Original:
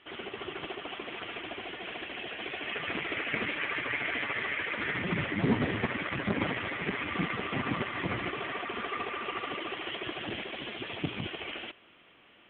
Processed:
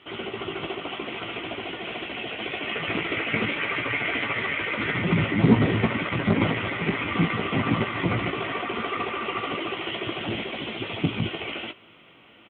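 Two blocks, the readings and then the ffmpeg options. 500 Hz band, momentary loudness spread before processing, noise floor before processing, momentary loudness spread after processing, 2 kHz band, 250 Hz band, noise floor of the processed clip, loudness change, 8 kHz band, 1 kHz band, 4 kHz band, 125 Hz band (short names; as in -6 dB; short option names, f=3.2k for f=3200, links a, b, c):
+7.5 dB, 8 LU, -59 dBFS, 9 LU, +5.0 dB, +9.5 dB, -52 dBFS, +7.0 dB, n/a, +6.5 dB, +6.0 dB, +11.0 dB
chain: -filter_complex "[0:a]highpass=68,equalizer=f=98:t=o:w=2.8:g=5.5,bandreject=f=1.7k:w=7.8,asplit=2[a][b];[b]adelay=18,volume=-7.5dB[c];[a][c]amix=inputs=2:normalize=0,volume=5.5dB"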